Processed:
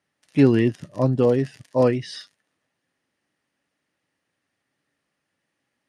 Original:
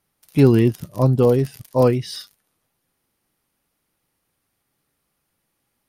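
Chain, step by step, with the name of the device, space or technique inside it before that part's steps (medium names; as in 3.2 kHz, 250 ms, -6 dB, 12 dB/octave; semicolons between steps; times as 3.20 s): car door speaker (cabinet simulation 100–8400 Hz, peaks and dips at 280 Hz +5 dB, 590 Hz +5 dB, 1.8 kHz +10 dB, 2.8 kHz +4 dB); trim -4.5 dB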